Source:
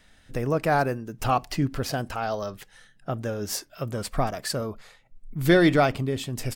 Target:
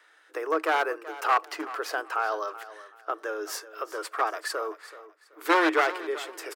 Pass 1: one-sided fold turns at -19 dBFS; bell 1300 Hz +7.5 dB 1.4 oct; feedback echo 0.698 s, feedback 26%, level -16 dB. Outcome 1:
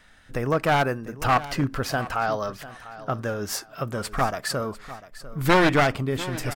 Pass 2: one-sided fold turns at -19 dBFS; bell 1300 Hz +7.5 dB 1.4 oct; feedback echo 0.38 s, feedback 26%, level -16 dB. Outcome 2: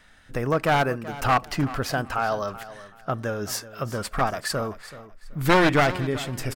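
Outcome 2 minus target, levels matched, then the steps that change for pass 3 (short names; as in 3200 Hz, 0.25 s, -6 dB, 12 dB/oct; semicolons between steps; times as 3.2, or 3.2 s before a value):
250 Hz band +4.0 dB
add after one-sided fold: rippled Chebyshev high-pass 310 Hz, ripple 6 dB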